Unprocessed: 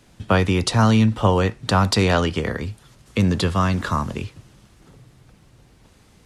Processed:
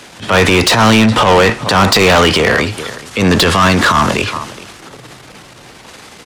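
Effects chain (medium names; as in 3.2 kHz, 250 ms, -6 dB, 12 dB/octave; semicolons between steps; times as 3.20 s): echo from a far wall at 71 m, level -23 dB; transient shaper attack -12 dB, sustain +5 dB; overdrive pedal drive 25 dB, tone 6 kHz, clips at -5.5 dBFS; trim +4.5 dB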